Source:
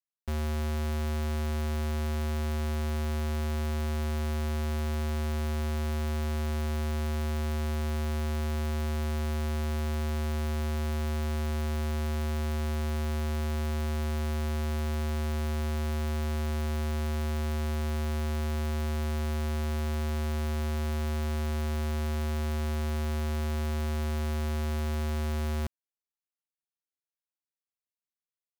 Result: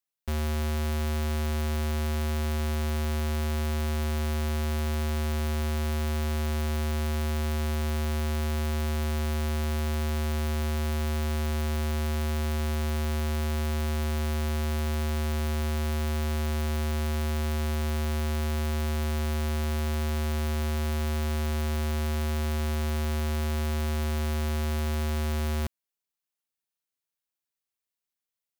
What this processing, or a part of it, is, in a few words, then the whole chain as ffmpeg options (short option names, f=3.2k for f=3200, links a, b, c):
presence and air boost: -af "equalizer=f=3k:t=o:w=1.7:g=2,highshelf=f=9k:g=5.5,volume=2dB"